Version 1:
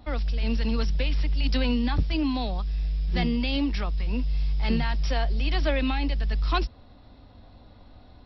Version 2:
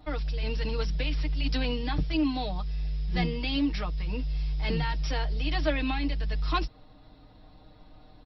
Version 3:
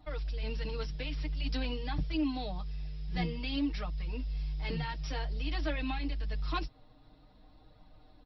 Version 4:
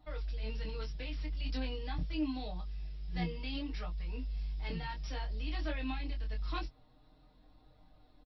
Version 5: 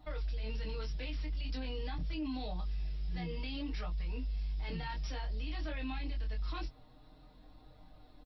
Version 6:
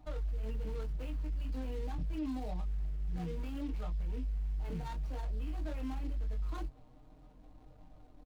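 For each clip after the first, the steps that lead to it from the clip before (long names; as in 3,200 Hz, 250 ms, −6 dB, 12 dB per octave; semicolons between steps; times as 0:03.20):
comb filter 6.5 ms, depth 71%; level −3.5 dB
flanger 0.51 Hz, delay 0.9 ms, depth 7.8 ms, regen −41%; level −2.5 dB
double-tracking delay 23 ms −4.5 dB; level −5.5 dB
brickwall limiter −36 dBFS, peak gain reduction 11.5 dB; level +5 dB
running median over 25 samples; level +1 dB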